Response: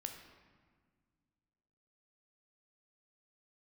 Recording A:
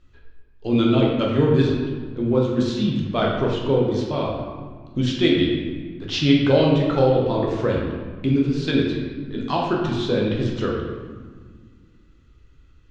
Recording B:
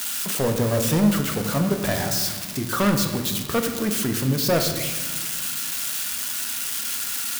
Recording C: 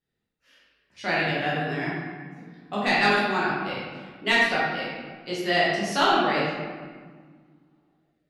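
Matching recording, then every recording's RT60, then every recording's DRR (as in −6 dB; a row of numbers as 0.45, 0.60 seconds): B; 1.6, 1.7, 1.6 seconds; −2.5, 4.0, −7.5 decibels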